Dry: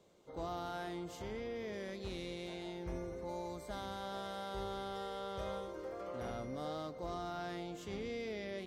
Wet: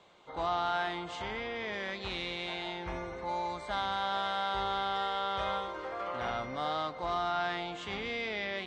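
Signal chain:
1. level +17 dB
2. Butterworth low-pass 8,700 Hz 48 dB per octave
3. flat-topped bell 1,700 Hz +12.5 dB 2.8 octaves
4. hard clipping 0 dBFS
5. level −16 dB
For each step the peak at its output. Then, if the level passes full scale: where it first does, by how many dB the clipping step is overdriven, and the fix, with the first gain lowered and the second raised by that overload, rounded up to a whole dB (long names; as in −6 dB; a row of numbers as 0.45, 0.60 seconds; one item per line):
−13.0, −13.0, −5.0, −5.0, −21.0 dBFS
no step passes full scale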